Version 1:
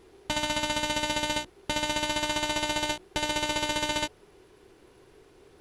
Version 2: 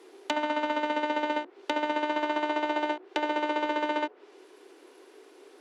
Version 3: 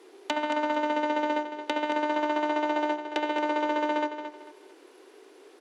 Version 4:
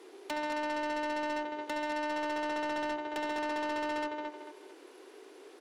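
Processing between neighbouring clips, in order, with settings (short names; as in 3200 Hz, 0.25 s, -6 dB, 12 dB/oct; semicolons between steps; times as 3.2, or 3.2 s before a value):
steep high-pass 270 Hz 48 dB/oct; treble ducked by the level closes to 1500 Hz, closed at -29.5 dBFS; gain +3.5 dB
feedback echo 0.223 s, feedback 28%, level -9.5 dB
soft clip -32 dBFS, distortion -9 dB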